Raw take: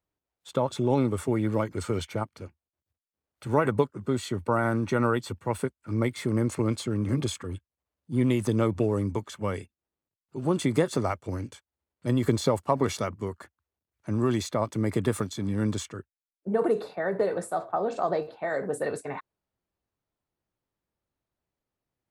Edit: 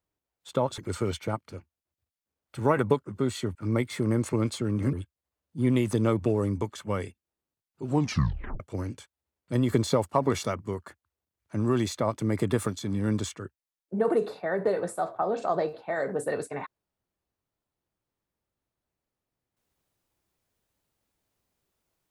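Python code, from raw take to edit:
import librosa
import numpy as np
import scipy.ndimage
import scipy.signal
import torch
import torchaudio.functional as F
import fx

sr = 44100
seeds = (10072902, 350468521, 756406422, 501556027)

y = fx.edit(x, sr, fx.cut(start_s=0.78, length_s=0.88),
    fx.cut(start_s=4.43, length_s=1.38),
    fx.cut(start_s=7.19, length_s=0.28),
    fx.tape_stop(start_s=10.41, length_s=0.73), tone=tone)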